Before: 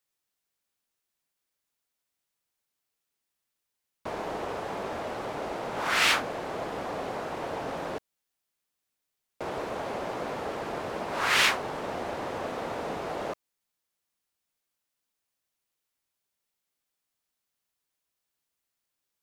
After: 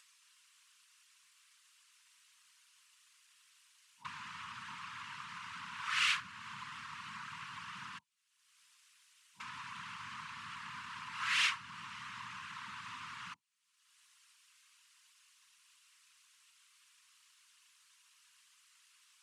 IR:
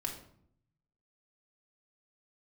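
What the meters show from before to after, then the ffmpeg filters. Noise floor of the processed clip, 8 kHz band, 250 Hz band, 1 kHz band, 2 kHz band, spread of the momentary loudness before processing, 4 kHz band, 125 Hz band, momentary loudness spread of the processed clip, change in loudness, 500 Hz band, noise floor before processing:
-72 dBFS, -9.5 dB, -22.0 dB, -12.0 dB, -8.0 dB, 13 LU, -7.0 dB, -14.5 dB, 17 LU, -9.5 dB, under -40 dB, -84 dBFS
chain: -filter_complex "[0:a]afftfilt=real='re*(1-between(b*sr/4096,180,950))':imag='im*(1-between(b*sr/4096,180,950))':win_size=4096:overlap=0.75,acrossover=split=260[s0][s1];[s0]alimiter=level_in=11.2:limit=0.0631:level=0:latency=1:release=26,volume=0.0891[s2];[s1]acompressor=mode=upward:threshold=0.0282:ratio=2.5[s3];[s2][s3]amix=inputs=2:normalize=0,afftfilt=real='hypot(re,im)*cos(2*PI*random(0))':imag='hypot(re,im)*sin(2*PI*random(1))':win_size=512:overlap=0.75,volume=11.2,asoftclip=hard,volume=0.0891,highpass=f=100:w=0.5412,highpass=f=100:w=1.3066,equalizer=f=510:t=q:w=4:g=4,equalizer=f=750:t=q:w=4:g=-9,equalizer=f=2800:t=q:w=4:g=5,lowpass=f=9800:w=0.5412,lowpass=f=9800:w=1.3066,volume=0.668"

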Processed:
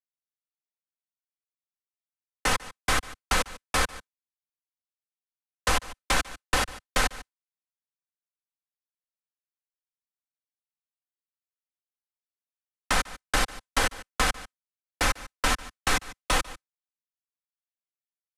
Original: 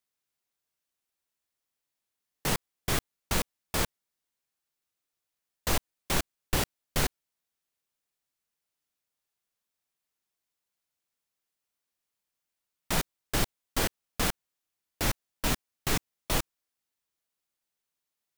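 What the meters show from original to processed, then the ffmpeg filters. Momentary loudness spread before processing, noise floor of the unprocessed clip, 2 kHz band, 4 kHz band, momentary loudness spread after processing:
2 LU, under -85 dBFS, +8.0 dB, +4.5 dB, 2 LU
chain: -filter_complex "[0:a]aecho=1:1:147:0.0891,agate=range=0.0224:threshold=0.00891:ratio=3:detection=peak,lowpass=f=11000:w=0.5412,lowpass=f=11000:w=1.3066,equalizer=f=1400:w=0.91:g=7,aecho=1:1:3.9:0.54,acrossover=split=110|390[s0][s1][s2];[s0]acompressor=threshold=0.0316:ratio=4[s3];[s1]acompressor=threshold=0.00447:ratio=4[s4];[s2]acompressor=threshold=0.0447:ratio=4[s5];[s3][s4][s5]amix=inputs=3:normalize=0,volume=1.78"

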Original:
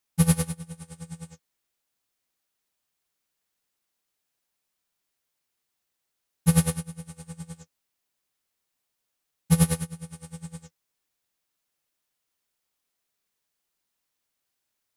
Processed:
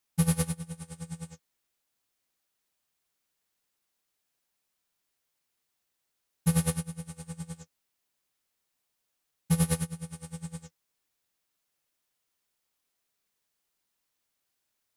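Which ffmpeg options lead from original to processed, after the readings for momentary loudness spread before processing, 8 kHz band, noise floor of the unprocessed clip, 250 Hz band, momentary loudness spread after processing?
20 LU, -4.0 dB, -81 dBFS, -4.5 dB, 16 LU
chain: -af "alimiter=limit=0.2:level=0:latency=1:release=124"

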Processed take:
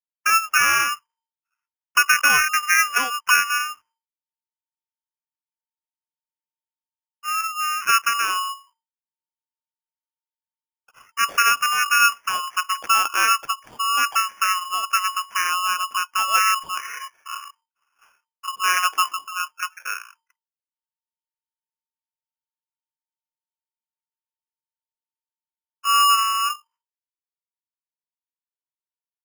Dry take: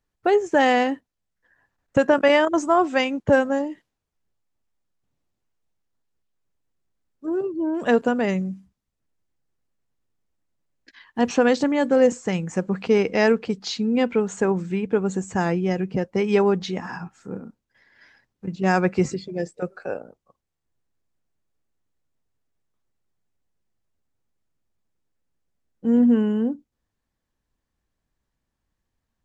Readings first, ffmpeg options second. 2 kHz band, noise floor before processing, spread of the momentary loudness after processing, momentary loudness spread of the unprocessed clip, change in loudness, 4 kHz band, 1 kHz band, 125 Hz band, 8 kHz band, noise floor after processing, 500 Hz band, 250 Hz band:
+8.5 dB, -81 dBFS, 15 LU, 15 LU, +2.0 dB, +11.5 dB, +7.0 dB, under -25 dB, +16.0 dB, under -85 dBFS, -25.5 dB, under -25 dB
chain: -af "agate=range=0.0224:threshold=0.00355:ratio=3:detection=peak,lowpass=f=2600:t=q:w=0.5098,lowpass=f=2600:t=q:w=0.6013,lowpass=f=2600:t=q:w=0.9,lowpass=f=2600:t=q:w=2.563,afreqshift=-3100,acrusher=samples=11:mix=1:aa=0.000001"

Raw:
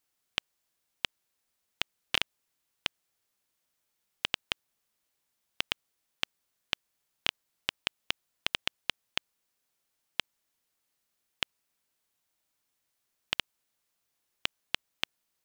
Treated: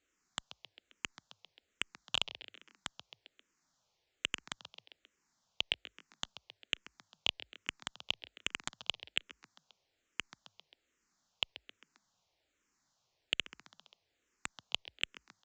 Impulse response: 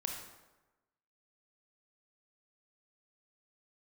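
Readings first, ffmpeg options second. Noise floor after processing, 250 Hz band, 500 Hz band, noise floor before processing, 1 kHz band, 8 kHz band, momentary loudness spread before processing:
-82 dBFS, -5.0 dB, -5.0 dB, -81 dBFS, -5.5 dB, -0.5 dB, 5 LU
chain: -filter_complex "[0:a]equalizer=f=3100:t=o:w=2.3:g=-3.5,asplit=5[s0][s1][s2][s3][s4];[s1]adelay=133,afreqshift=49,volume=0.0708[s5];[s2]adelay=266,afreqshift=98,volume=0.0427[s6];[s3]adelay=399,afreqshift=147,volume=0.0254[s7];[s4]adelay=532,afreqshift=196,volume=0.0153[s8];[s0][s5][s6][s7][s8]amix=inputs=5:normalize=0,aresample=16000,asoftclip=type=tanh:threshold=0.0891,aresample=44100,asplit=2[s9][s10];[s10]afreqshift=-1.2[s11];[s9][s11]amix=inputs=2:normalize=1,volume=2.82"

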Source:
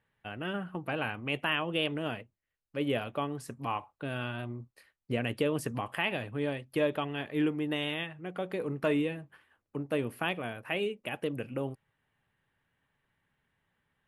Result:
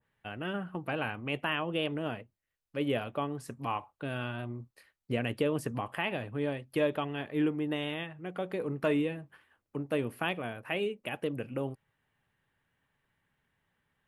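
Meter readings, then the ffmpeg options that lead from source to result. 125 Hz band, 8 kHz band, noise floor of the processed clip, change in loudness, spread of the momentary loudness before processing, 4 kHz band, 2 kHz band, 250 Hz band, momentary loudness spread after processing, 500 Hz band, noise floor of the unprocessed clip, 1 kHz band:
0.0 dB, -2.5 dB, -85 dBFS, -0.5 dB, 9 LU, -3.0 dB, -1.5 dB, 0.0 dB, 9 LU, 0.0 dB, -85 dBFS, 0.0 dB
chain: -af "adynamicequalizer=threshold=0.00501:dfrequency=1700:dqfactor=0.7:tfrequency=1700:tqfactor=0.7:attack=5:release=100:ratio=0.375:range=2.5:mode=cutabove:tftype=highshelf"

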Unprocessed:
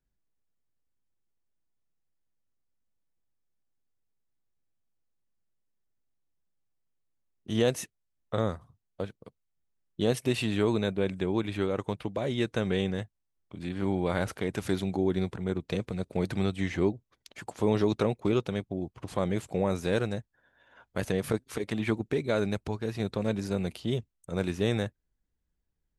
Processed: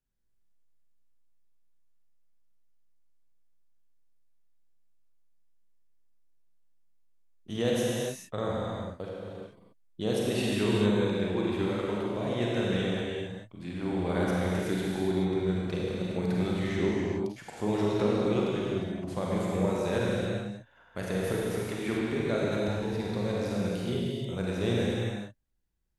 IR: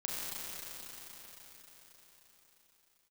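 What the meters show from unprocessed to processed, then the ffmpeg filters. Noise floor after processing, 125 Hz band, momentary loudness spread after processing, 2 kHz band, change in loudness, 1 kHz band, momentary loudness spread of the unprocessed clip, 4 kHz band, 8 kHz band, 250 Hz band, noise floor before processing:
-62 dBFS, +0.5 dB, 10 LU, +0.5 dB, +0.5 dB, +1.0 dB, 12 LU, +1.0 dB, +1.0 dB, +1.0 dB, -80 dBFS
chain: -filter_complex "[1:a]atrim=start_sample=2205,afade=t=out:st=0.44:d=0.01,atrim=end_sample=19845,asetrate=38808,aresample=44100[s0];[0:a][s0]afir=irnorm=-1:irlink=0,volume=0.708"

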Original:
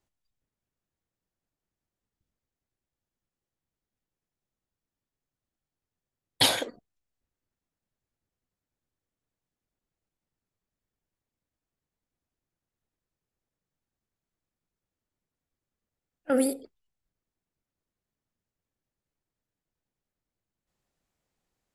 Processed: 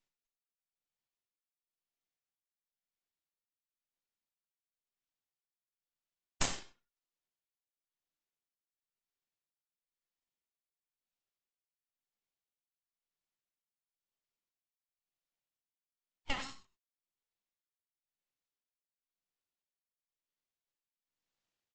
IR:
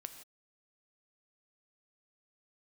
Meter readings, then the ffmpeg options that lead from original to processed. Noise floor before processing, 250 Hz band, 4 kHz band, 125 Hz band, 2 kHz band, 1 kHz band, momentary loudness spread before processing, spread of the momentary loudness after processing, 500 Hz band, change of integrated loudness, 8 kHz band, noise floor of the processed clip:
under -85 dBFS, -20.0 dB, -15.5 dB, -6.0 dB, -8.5 dB, -9.5 dB, 16 LU, 17 LU, -21.0 dB, -13.5 dB, -8.5 dB, under -85 dBFS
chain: -filter_complex "[0:a]highpass=f=890:w=0.5412,highpass=f=890:w=1.3066,highshelf=f=3700:g=-10,aresample=16000,aeval=exprs='abs(val(0))':c=same,aresample=44100,tremolo=f=0.98:d=0.86[s0];[1:a]atrim=start_sample=2205,atrim=end_sample=6174,asetrate=57330,aresample=44100[s1];[s0][s1]afir=irnorm=-1:irlink=0,volume=3.76"

